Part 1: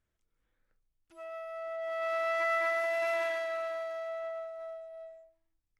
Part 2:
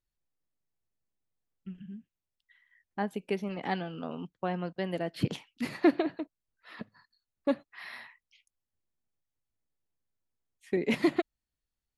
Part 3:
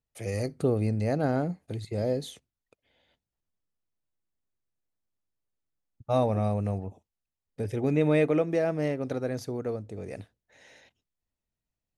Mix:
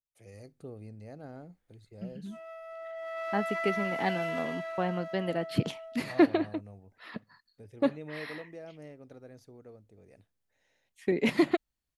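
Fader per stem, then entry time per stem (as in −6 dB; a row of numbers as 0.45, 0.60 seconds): −3.5, +1.5, −19.0 decibels; 1.15, 0.35, 0.00 seconds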